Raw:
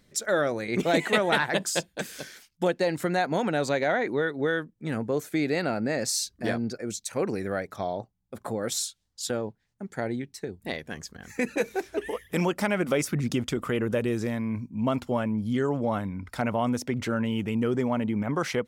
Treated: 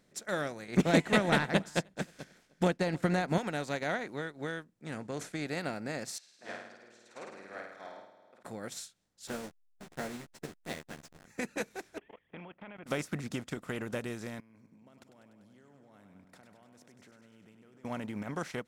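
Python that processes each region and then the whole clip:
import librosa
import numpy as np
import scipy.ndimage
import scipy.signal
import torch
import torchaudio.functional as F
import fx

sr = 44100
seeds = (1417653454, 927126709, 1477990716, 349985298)

y = fx.chain(x, sr, fx.lowpass(hz=3500.0, slope=6),
    fx.low_shelf(hz=220.0, db=12.0),
    fx.echo_single(ms=307, db=-22.0), at=(0.77, 3.38))
y = fx.chain(y, sr, fx.lowpass(hz=9700.0, slope=24),
    fx.sustainer(db_per_s=110.0), at=(4.86, 5.47))
y = fx.chain(y, sr, fx.bandpass_edges(low_hz=710.0, high_hz=2700.0),
    fx.room_flutter(wall_m=9.0, rt60_s=1.1), at=(6.18, 8.43))
y = fx.chain(y, sr, fx.delta_hold(step_db=-35.5),
    fx.doubler(ms=13.0, db=-3), at=(9.27, 11.25))
y = fx.chain(y, sr, fx.cheby_ripple(hz=3400.0, ripple_db=6),
    fx.level_steps(step_db=17), at=(11.98, 12.86))
y = fx.chain(y, sr, fx.highpass(hz=110.0, slope=12),
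    fx.level_steps(step_db=22),
    fx.echo_feedback(ms=98, feedback_pct=57, wet_db=-11.5), at=(14.4, 17.85))
y = fx.bin_compress(y, sr, power=0.6)
y = fx.dynamic_eq(y, sr, hz=450.0, q=0.77, threshold_db=-33.0, ratio=4.0, max_db=-4)
y = fx.upward_expand(y, sr, threshold_db=-33.0, expansion=2.5)
y = y * 10.0 ** (-2.0 / 20.0)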